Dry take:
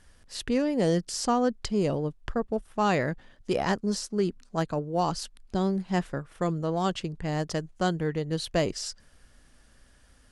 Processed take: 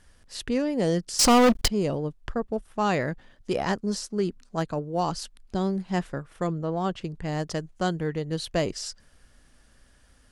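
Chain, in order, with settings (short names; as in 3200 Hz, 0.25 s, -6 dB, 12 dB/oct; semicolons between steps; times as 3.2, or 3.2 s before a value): 1.19–1.68 sample leveller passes 5; 6.46–7.01 high shelf 4900 Hz -> 2900 Hz -11.5 dB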